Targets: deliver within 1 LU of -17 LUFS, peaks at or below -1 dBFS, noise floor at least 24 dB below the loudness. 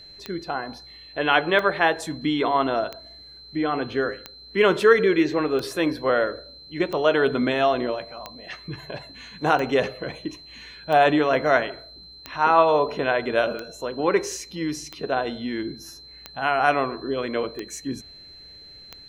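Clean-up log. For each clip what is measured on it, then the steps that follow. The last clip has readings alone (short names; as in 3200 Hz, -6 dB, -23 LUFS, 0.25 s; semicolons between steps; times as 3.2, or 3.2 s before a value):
clicks 15; steady tone 4100 Hz; tone level -43 dBFS; loudness -23.0 LUFS; peak -3.0 dBFS; loudness target -17.0 LUFS
-> de-click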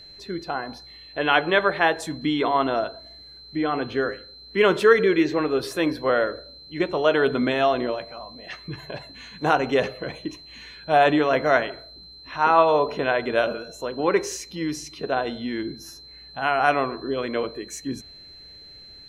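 clicks 0; steady tone 4100 Hz; tone level -43 dBFS
-> notch 4100 Hz, Q 30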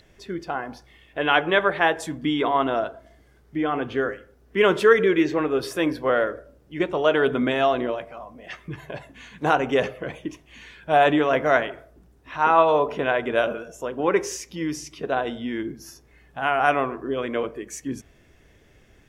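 steady tone none; loudness -23.0 LUFS; peak -3.5 dBFS; loudness target -17.0 LUFS
-> gain +6 dB; limiter -1 dBFS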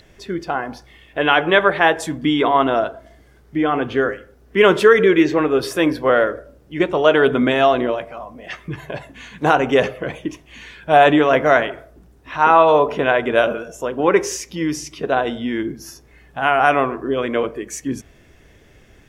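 loudness -17.5 LUFS; peak -1.0 dBFS; noise floor -51 dBFS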